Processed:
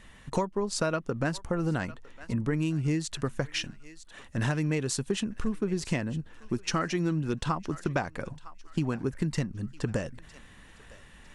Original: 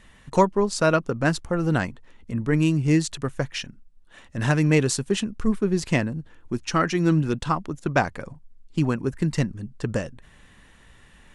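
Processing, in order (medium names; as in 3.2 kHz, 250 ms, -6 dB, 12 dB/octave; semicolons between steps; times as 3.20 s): on a send: thinning echo 956 ms, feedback 37%, high-pass 1.1 kHz, level -20.5 dB; on the sum: compression 6:1, threshold -25 dBFS, peak gain reduction 13 dB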